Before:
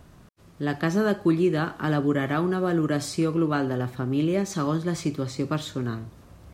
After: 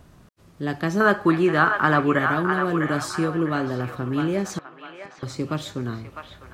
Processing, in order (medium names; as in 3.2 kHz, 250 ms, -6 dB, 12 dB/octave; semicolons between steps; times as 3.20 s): 1.00–2.19 s: peaking EQ 1.3 kHz +14 dB 1.7 oct; 4.58–5.23 s: inverted gate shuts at -22 dBFS, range -31 dB; feedback echo behind a band-pass 653 ms, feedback 37%, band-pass 1.5 kHz, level -4 dB